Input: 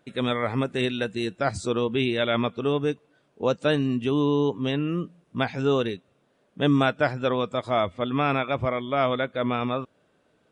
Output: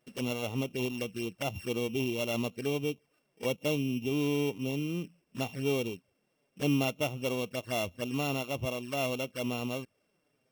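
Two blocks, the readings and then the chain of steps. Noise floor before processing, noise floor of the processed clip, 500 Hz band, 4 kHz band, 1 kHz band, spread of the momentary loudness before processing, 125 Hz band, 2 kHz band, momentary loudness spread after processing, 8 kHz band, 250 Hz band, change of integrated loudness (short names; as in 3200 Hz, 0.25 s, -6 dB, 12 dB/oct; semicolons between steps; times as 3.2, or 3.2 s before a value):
-67 dBFS, -77 dBFS, -8.5 dB, -6.0 dB, -12.5 dB, 6 LU, -6.5 dB, -7.0 dB, 7 LU, n/a, -7.0 dB, -7.5 dB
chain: sample sorter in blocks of 16 samples; envelope flanger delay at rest 8.3 ms, full sweep at -23.5 dBFS; gain -6.5 dB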